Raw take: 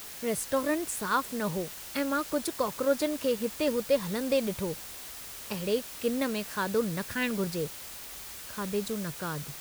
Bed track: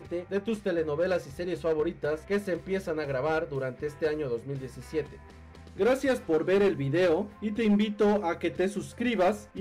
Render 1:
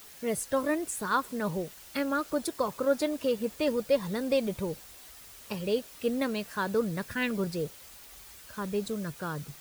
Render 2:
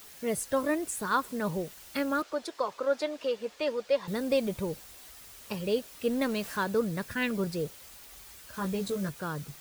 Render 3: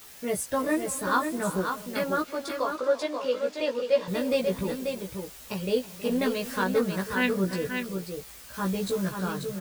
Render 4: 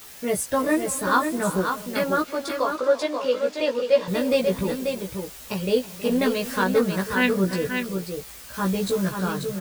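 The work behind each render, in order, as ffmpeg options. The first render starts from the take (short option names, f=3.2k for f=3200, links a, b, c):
-af "afftdn=nr=8:nf=-43"
-filter_complex "[0:a]asettb=1/sr,asplit=3[a][b][c];[a]atrim=end=2.224[d];[b]atrim=start=2.22:end=4.08,asetpts=PTS-STARTPTS,afade=t=in:d=0.004:c=qsin,afade=t=out:st=1.856:d=0.004:c=qsin,acrossover=split=370 6400:gain=0.158 1 0.141[e][f][g];[e][f][g]amix=inputs=3:normalize=0[h];[c]atrim=start=4.076[i];[d][h]acrossfade=d=0.004:c1=hsin:c2=qsin[j];[j][i]acrossfade=d=0.004:c1=qsin:c2=hsin,asettb=1/sr,asplit=3[k][l][m];[k]atrim=end=6.104[n];[l]atrim=start=6.1:end=6.64,asetpts=PTS-STARTPTS,afade=t=in:d=0.004:c=qsin,afade=t=out:st=0.536:d=0.004:c=qsin,aeval=exprs='val(0)+0.5*0.00841*sgn(val(0))':c=same[o];[m]atrim=start=6.636[p];[n][o]acrossfade=d=0.004:c1=hsin:c2=qsin[q];[q][p]acrossfade=d=0.004:c1=qsin:c2=hsin,asettb=1/sr,asplit=3[r][s][t];[r]atrim=end=8.524[u];[s]atrim=start=8.52:end=9.09,asetpts=PTS-STARTPTS,afade=t=in:d=0.004:c=qsin,afade=t=out:st=0.566:d=0.004:c=qsin,asplit=2[v][w];[w]adelay=16,volume=-3dB[x];[v][x]amix=inputs=2:normalize=0,atrim=end_sample=25137[y];[t]atrim=start=9.086[z];[u][y]acrossfade=d=0.004:c1=hsin:c2=qsin[aa];[aa][z]acrossfade=d=0.004:c1=qsin:c2=hsin"
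-filter_complex "[0:a]asplit=2[a][b];[b]adelay=16,volume=-2dB[c];[a][c]amix=inputs=2:normalize=0,asplit=2[d][e];[e]aecho=0:1:322|384|537:0.15|0.112|0.501[f];[d][f]amix=inputs=2:normalize=0"
-af "volume=4.5dB"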